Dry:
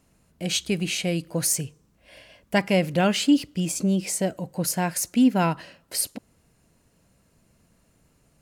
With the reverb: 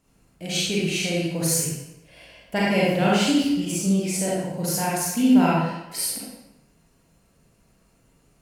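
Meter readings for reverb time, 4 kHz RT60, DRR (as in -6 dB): 0.95 s, 0.75 s, -6.5 dB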